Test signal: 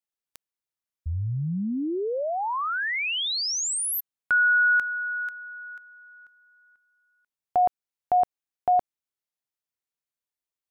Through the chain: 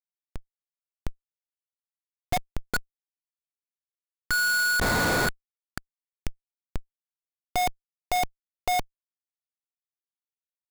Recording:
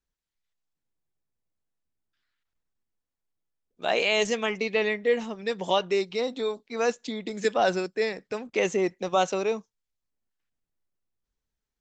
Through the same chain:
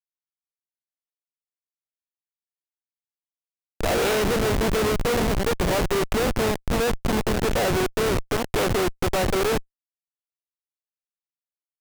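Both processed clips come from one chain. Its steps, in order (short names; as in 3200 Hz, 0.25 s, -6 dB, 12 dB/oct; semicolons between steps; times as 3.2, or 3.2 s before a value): per-bin compression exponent 0.4; downsampling 22050 Hz; Schmitt trigger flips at -20.5 dBFS; gain +3 dB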